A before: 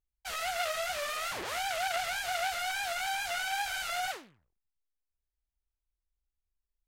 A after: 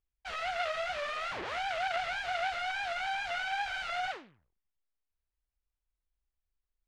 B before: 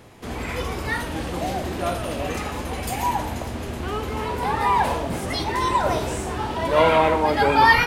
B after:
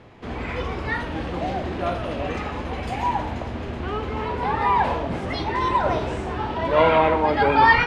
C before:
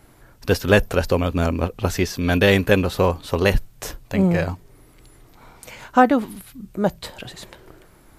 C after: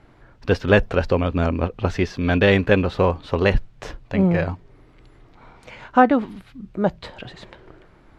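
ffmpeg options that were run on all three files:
-af "lowpass=3.3k"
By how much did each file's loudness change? -1.5, 0.0, 0.0 LU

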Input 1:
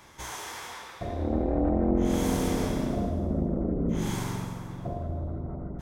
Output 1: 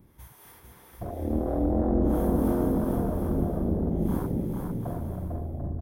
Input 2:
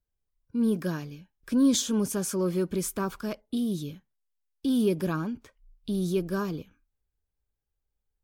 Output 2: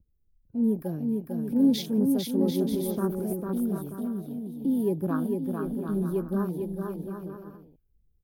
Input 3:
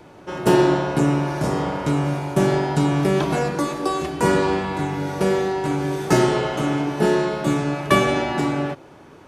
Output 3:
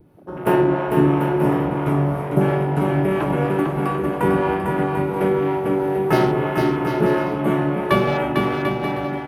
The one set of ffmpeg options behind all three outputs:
-filter_complex "[0:a]afwtdn=0.0251,highshelf=f=5.3k:g=-7.5,acrossover=split=380|3500[a][b][c];[a]acompressor=mode=upward:threshold=-42dB:ratio=2.5[d];[d][b][c]amix=inputs=3:normalize=0,acrossover=split=430[e][f];[e]aeval=exprs='val(0)*(1-0.5/2+0.5/2*cos(2*PI*3*n/s))':c=same[g];[f]aeval=exprs='val(0)*(1-0.5/2-0.5/2*cos(2*PI*3*n/s))':c=same[h];[g][h]amix=inputs=2:normalize=0,aexciter=amount=12.4:drive=6.3:freq=10k,aecho=1:1:450|742.5|932.6|1056|1137:0.631|0.398|0.251|0.158|0.1,volume=1.5dB"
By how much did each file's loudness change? +2.0, 0.0, +1.0 LU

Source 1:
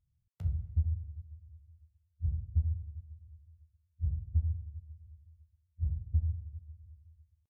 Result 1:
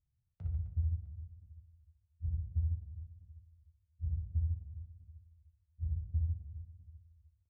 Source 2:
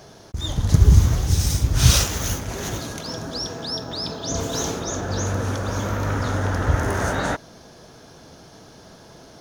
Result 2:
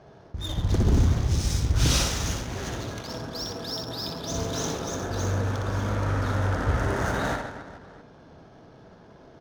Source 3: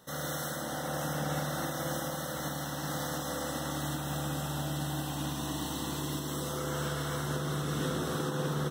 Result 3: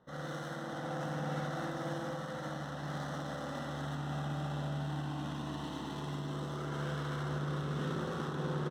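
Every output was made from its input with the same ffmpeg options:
-af "aeval=exprs='0.282*(abs(mod(val(0)/0.282+3,4)-2)-1)':c=same,aecho=1:1:60|144|261.6|426.2|656.7:0.631|0.398|0.251|0.158|0.1,adynamicsmooth=sensitivity=7:basefreq=1.9k,volume=-5.5dB"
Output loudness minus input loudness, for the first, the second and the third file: -3.5, -5.0, -4.5 LU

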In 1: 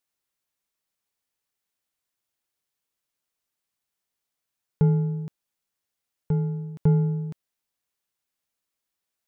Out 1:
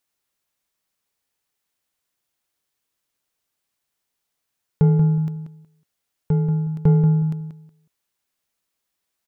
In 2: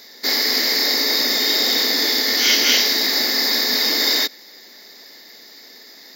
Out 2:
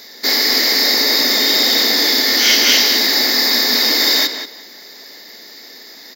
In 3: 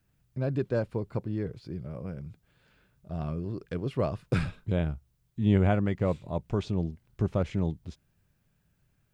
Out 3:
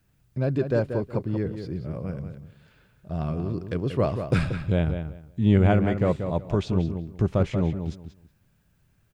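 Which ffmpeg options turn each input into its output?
-filter_complex "[0:a]asplit=2[a][b];[b]asoftclip=type=tanh:threshold=-16dB,volume=-5dB[c];[a][c]amix=inputs=2:normalize=0,asplit=2[d][e];[e]adelay=184,lowpass=f=3.8k:p=1,volume=-8dB,asplit=2[f][g];[g]adelay=184,lowpass=f=3.8k:p=1,volume=0.21,asplit=2[h][i];[i]adelay=184,lowpass=f=3.8k:p=1,volume=0.21[j];[d][f][h][j]amix=inputs=4:normalize=0,volume=1dB"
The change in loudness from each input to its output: +5.5, +4.0, +5.0 LU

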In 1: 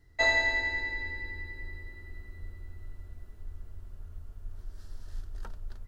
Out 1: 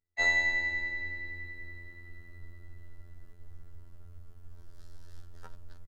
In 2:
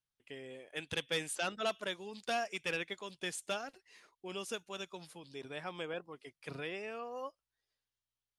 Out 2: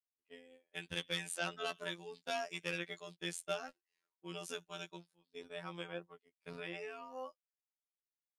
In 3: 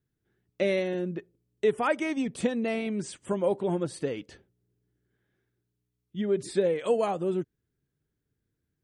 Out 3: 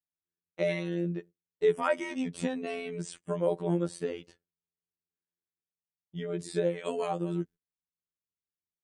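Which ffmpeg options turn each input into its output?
-af "agate=range=-24dB:threshold=-46dB:ratio=16:detection=peak,aecho=1:1:5.2:0.34,afftfilt=real='hypot(re,im)*cos(PI*b)':imag='0':win_size=2048:overlap=0.75"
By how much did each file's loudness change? -1.0, -2.5, -3.5 LU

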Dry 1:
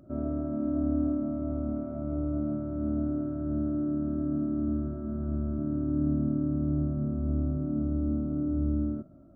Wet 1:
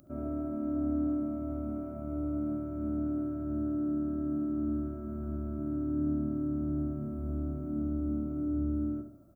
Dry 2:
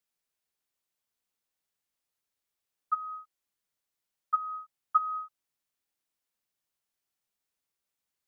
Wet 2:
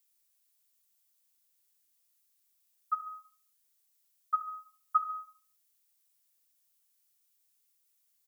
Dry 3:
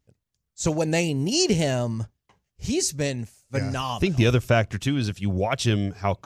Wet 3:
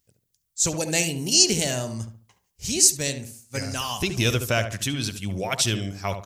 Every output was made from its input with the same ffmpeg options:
-filter_complex "[0:a]crystalizer=i=5.5:c=0,asplit=2[a][b];[b]adelay=71,lowpass=f=1.6k:p=1,volume=-7.5dB,asplit=2[c][d];[d]adelay=71,lowpass=f=1.6k:p=1,volume=0.35,asplit=2[e][f];[f]adelay=71,lowpass=f=1.6k:p=1,volume=0.35,asplit=2[g][h];[h]adelay=71,lowpass=f=1.6k:p=1,volume=0.35[i];[c][e][g][i]amix=inputs=4:normalize=0[j];[a][j]amix=inputs=2:normalize=0,volume=-5.5dB"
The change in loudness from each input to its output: -3.5, -2.5, +1.5 LU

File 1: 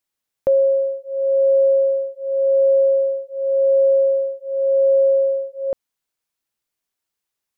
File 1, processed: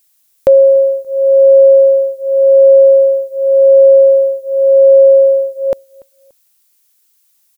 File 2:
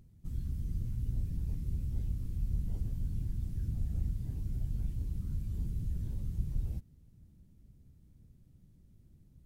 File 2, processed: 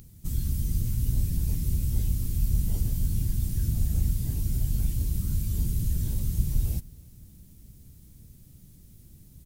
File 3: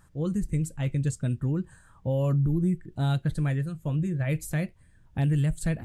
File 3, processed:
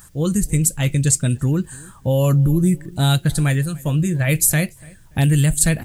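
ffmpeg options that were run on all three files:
-filter_complex "[0:a]highshelf=f=2.4k:g=10.5,crystalizer=i=1:c=0,asplit=2[a][b];[b]adelay=289,lowpass=f=3k:p=1,volume=-24dB,asplit=2[c][d];[d]adelay=289,lowpass=f=3k:p=1,volume=0.3[e];[c][e]amix=inputs=2:normalize=0[f];[a][f]amix=inputs=2:normalize=0,volume=8.5dB"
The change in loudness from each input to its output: +9.5, +9.0, +10.0 LU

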